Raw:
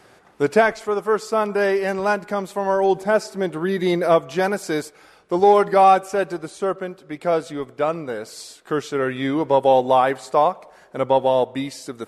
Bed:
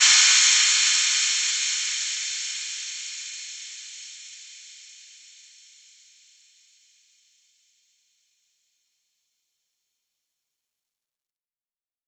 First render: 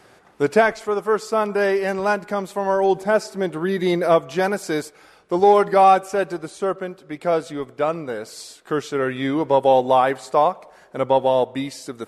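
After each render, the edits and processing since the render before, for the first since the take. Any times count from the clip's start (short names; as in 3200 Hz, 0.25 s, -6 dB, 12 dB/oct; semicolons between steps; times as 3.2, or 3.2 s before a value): nothing audible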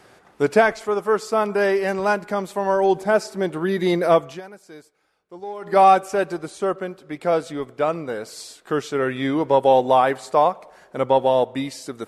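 4.25–5.77 dip -19 dB, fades 0.16 s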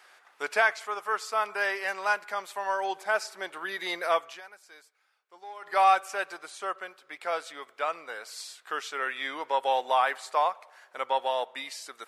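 HPF 1200 Hz 12 dB/oct; bell 8600 Hz -4.5 dB 2 oct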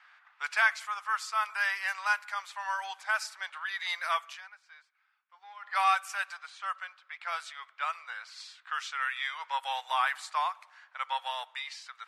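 low-pass opened by the level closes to 2600 Hz, open at -26 dBFS; HPF 1000 Hz 24 dB/oct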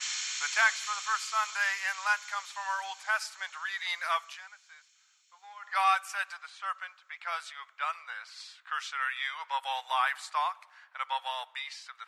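add bed -19 dB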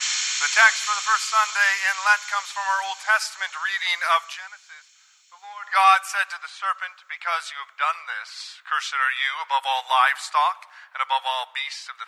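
gain +10 dB; limiter -3 dBFS, peak gain reduction 0.5 dB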